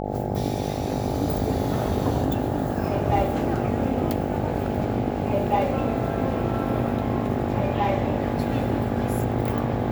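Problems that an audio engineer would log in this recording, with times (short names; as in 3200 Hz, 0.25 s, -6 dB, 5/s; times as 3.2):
buzz 50 Hz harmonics 17 -29 dBFS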